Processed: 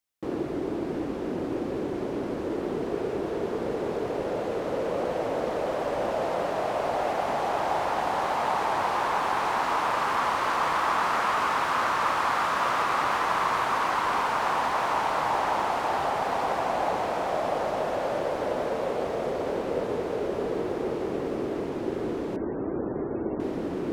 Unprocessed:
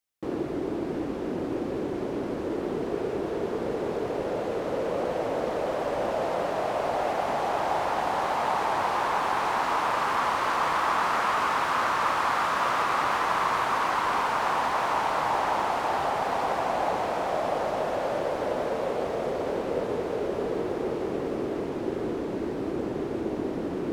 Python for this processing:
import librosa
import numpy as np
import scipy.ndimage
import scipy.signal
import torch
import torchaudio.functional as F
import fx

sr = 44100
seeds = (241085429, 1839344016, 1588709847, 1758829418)

y = fx.spec_topn(x, sr, count=64, at=(22.36, 23.4))